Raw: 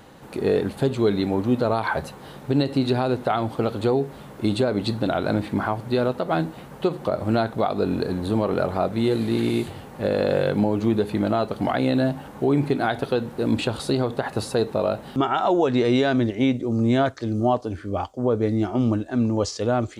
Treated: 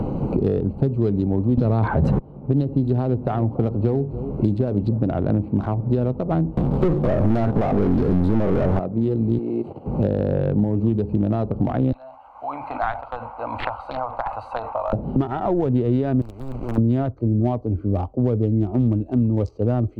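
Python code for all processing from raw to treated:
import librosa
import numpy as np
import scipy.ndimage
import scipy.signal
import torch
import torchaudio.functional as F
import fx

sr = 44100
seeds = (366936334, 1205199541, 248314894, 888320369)

y = fx.chain(x, sr, fx.lowpass(hz=8400.0, slope=12),
    fx.low_shelf(hz=320.0, db=8.5),
    fx.env_flatten(amount_pct=100), at=(1.57, 2.19))
y = fx.chain(y, sr, fx.block_float(bits=7),
    fx.echo_single(ms=286, db=-16.5), at=(2.95, 4.98))
y = fx.chain(y, sr, fx.spec_steps(hold_ms=50),
    fx.leveller(passes=5), at=(6.57, 8.79))
y = fx.chain(y, sr, fx.peak_eq(hz=660.0, db=3.5, octaves=1.3),
    fx.level_steps(step_db=12),
    fx.highpass(hz=320.0, slope=12), at=(9.38, 9.86))
y = fx.chain(y, sr, fx.cheby2_highpass(hz=430.0, order=4, stop_db=40),
    fx.sustainer(db_per_s=87.0), at=(11.92, 14.93))
y = fx.chain(y, sr, fx.quant_companded(bits=4),
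    fx.spectral_comp(ratio=4.0), at=(16.21, 16.78))
y = fx.wiener(y, sr, points=25)
y = fx.tilt_eq(y, sr, slope=-4.0)
y = fx.band_squash(y, sr, depth_pct=100)
y = F.gain(torch.from_numpy(y), -7.5).numpy()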